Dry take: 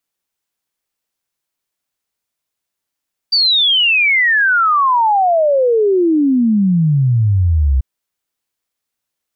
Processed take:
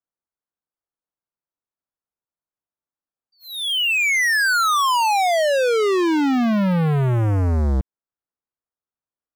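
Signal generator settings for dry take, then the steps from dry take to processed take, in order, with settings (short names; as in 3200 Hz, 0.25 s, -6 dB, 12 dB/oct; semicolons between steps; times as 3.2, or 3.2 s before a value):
log sweep 4700 Hz -> 63 Hz 4.49 s -9.5 dBFS
LPF 1500 Hz 24 dB/oct; sample leveller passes 5; compressor 10:1, threshold -18 dBFS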